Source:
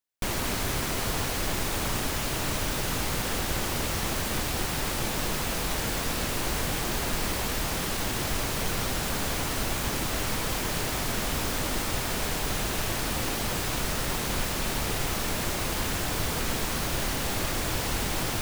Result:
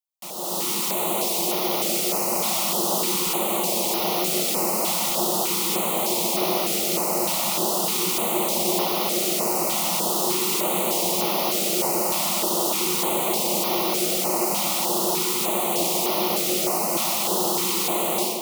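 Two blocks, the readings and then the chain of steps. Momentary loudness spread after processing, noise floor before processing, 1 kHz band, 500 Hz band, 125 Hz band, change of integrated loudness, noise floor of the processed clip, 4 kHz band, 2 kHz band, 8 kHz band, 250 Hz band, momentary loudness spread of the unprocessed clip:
1 LU, -30 dBFS, +7.0 dB, +8.5 dB, -6.5 dB, +7.0 dB, -25 dBFS, +5.5 dB, -1.5 dB, +7.5 dB, +5.5 dB, 0 LU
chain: bell 6200 Hz -3.5 dB 2.4 oct; frequency shift -370 Hz; AGC gain up to 14.5 dB; elliptic high-pass 180 Hz, stop band 40 dB; low shelf 390 Hz -4.5 dB; fixed phaser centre 680 Hz, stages 4; darkening echo 1.136 s, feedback 76%, low-pass 4400 Hz, level -7 dB; stepped notch 3.3 Hz 420–8000 Hz

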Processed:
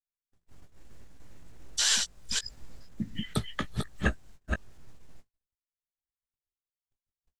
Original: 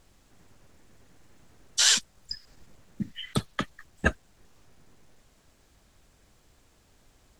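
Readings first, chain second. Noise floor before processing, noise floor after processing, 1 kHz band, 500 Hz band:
-63 dBFS, under -85 dBFS, -3.0 dB, -3.0 dB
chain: reverse delay 0.239 s, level -3 dB; gate -51 dBFS, range -58 dB; low shelf 110 Hz +8.5 dB; in parallel at +2.5 dB: compressor, threshold -32 dBFS, peak gain reduction 16 dB; on the sum: doubler 18 ms -8.5 dB; gain -8 dB

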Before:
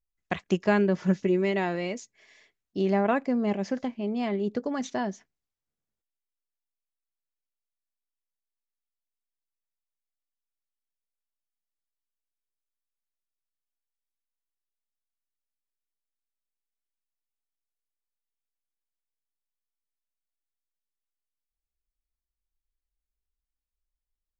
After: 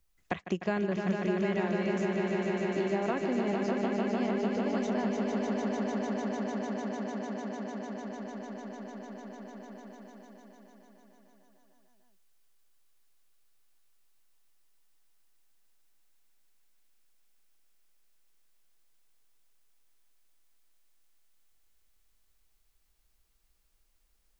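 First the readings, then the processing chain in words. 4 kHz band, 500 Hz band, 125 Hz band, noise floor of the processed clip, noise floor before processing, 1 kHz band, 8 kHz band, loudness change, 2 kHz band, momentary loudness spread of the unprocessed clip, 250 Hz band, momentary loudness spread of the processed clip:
-1.5 dB, -1.5 dB, -2.5 dB, -70 dBFS, under -85 dBFS, -2.0 dB, n/a, -4.5 dB, -2.0 dB, 11 LU, -1.5 dB, 15 LU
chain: on a send: swelling echo 0.15 s, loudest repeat 5, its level -6.5 dB; on the sum: three-band squash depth 70%; gain -7 dB

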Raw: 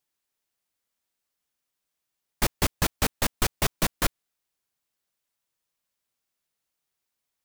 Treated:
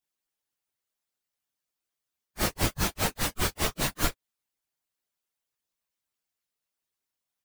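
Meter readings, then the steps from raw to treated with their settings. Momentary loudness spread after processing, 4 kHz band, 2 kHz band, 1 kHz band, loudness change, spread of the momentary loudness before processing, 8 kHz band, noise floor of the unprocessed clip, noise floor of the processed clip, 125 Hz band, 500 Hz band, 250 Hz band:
3 LU, -1.5 dB, -1.5 dB, -1.5 dB, -1.5 dB, 3 LU, -1.5 dB, -84 dBFS, under -85 dBFS, -1.5 dB, -1.5 dB, -1.5 dB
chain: phase scrambler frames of 0.1 s; harmonic-percussive split harmonic -14 dB

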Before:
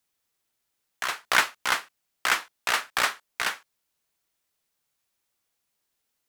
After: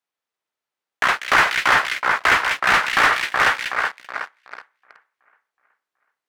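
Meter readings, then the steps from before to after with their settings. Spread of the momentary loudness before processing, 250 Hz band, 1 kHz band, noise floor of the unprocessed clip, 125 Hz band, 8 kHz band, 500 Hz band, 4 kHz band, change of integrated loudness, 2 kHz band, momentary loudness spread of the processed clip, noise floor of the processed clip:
9 LU, +12.0 dB, +11.0 dB, -79 dBFS, +14.5 dB, +0.5 dB, +10.5 dB, +5.5 dB, +9.0 dB, +10.5 dB, 13 LU, under -85 dBFS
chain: dynamic EQ 1900 Hz, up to +3 dB, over -37 dBFS, Q 1.5; on a send: split-band echo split 2000 Hz, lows 0.373 s, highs 0.194 s, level -8 dB; on the sum: sample leveller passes 3; HPF 80 Hz; bell 150 Hz -3 dB 2.2 oct; overdrive pedal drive 13 dB, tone 1100 Hz, clips at -3 dBFS

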